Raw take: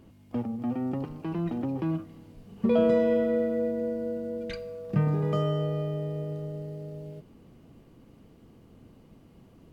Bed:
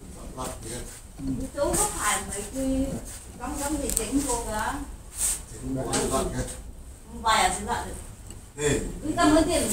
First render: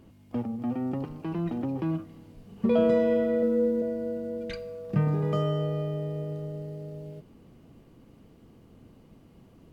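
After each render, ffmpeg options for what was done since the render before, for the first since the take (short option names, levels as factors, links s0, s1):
-filter_complex "[0:a]asettb=1/sr,asplit=3[s0][s1][s2];[s0]atrim=end=3.424[s3];[s1]atrim=start=3.42:end=3.82,asetpts=PTS-STARTPTS,afade=t=in:d=0.004:c=qsin,afade=t=out:st=0.396:d=0.004:c=qsin,aecho=1:1:3.9:0.73,atrim=end_sample=17640[s4];[s2]atrim=start=3.816[s5];[s3][s4]acrossfade=d=0.004:c1=hsin:c2=qsin[s6];[s6][s5]acrossfade=d=0.004:c1=qsin:c2=hsin"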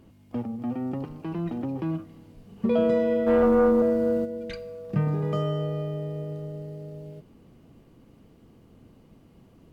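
-filter_complex "[0:a]asplit=3[s0][s1][s2];[s0]afade=t=out:st=3.26:d=0.02[s3];[s1]aeval=exprs='0.168*sin(PI/2*1.78*val(0)/0.168)':c=same,afade=t=in:st=3.26:d=0.02,afade=t=out:st=4.24:d=0.02[s4];[s2]afade=t=in:st=4.24:d=0.02[s5];[s3][s4][s5]amix=inputs=3:normalize=0"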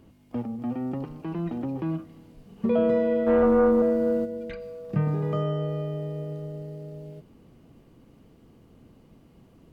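-filter_complex "[0:a]bandreject=f=101:t=h:w=4,bandreject=f=202:t=h:w=4,acrossover=split=2800[s0][s1];[s1]acompressor=threshold=0.00112:ratio=4:attack=1:release=60[s2];[s0][s2]amix=inputs=2:normalize=0"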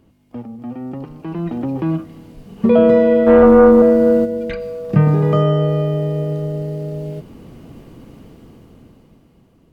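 -af "dynaudnorm=f=230:g=13:m=5.96"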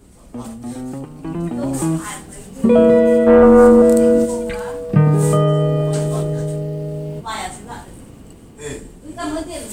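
-filter_complex "[1:a]volume=0.562[s0];[0:a][s0]amix=inputs=2:normalize=0"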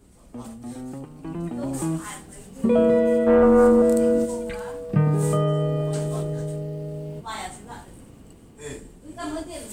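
-af "volume=0.447"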